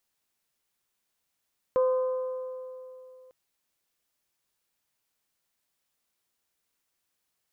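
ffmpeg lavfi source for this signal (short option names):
-f lavfi -i "aevalsrc='0.106*pow(10,-3*t/2.95)*sin(2*PI*513*t)+0.0282*pow(10,-3*t/2.396)*sin(2*PI*1026*t)+0.0075*pow(10,-3*t/2.269)*sin(2*PI*1231.2*t)+0.002*pow(10,-3*t/2.122)*sin(2*PI*1539*t)':d=1.55:s=44100"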